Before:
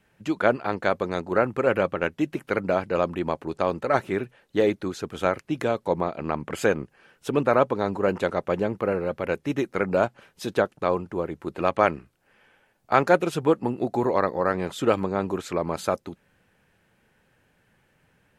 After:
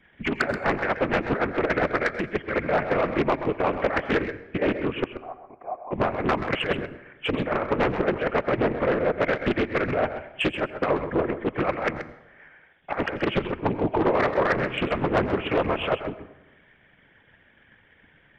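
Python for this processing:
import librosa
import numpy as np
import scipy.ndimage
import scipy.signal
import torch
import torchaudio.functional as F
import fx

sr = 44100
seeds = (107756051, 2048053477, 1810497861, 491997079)

y = fx.freq_compress(x, sr, knee_hz=2100.0, ratio=4.0)
y = fx.peak_eq(y, sr, hz=1800.0, db=10.0, octaves=0.31)
y = fx.transient(y, sr, attack_db=8, sustain_db=-3)
y = fx.over_compress(y, sr, threshold_db=-19.0, ratio=-0.5)
y = fx.whisperise(y, sr, seeds[0])
y = 10.0 ** (-14.5 / 20.0) * np.tanh(y / 10.0 ** (-14.5 / 20.0))
y = fx.formant_cascade(y, sr, vowel='a', at=(5.04, 5.91))
y = y + 10.0 ** (-10.0 / 20.0) * np.pad(y, (int(130 * sr / 1000.0), 0))[:len(y)]
y = fx.rev_plate(y, sr, seeds[1], rt60_s=1.1, hf_ratio=0.55, predelay_ms=75, drr_db=16.0)
y = fx.doppler_dist(y, sr, depth_ms=0.55)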